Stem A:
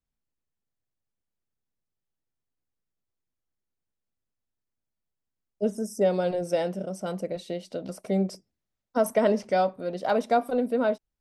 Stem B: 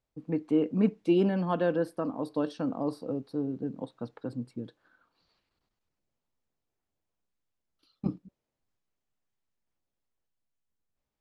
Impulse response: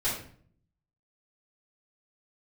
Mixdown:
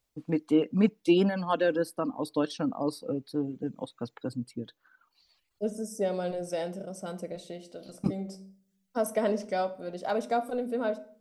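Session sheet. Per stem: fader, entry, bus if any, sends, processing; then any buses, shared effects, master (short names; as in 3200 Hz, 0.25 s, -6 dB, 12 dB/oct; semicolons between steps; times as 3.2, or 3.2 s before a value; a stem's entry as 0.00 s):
-6.0 dB, 0.00 s, send -19.5 dB, bell 7800 Hz +5.5 dB 1 oct; auto duck -6 dB, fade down 0.45 s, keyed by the second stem
+2.0 dB, 0.00 s, no send, reverb removal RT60 1.2 s; high shelf 2400 Hz +10.5 dB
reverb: on, RT60 0.55 s, pre-delay 3 ms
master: dry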